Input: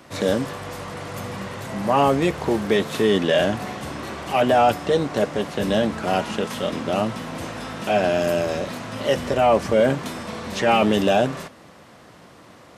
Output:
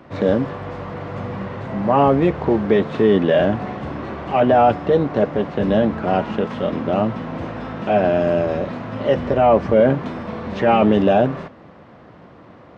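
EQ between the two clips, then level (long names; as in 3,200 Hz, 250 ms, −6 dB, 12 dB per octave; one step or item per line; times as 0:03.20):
head-to-tape spacing loss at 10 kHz 37 dB
+5.5 dB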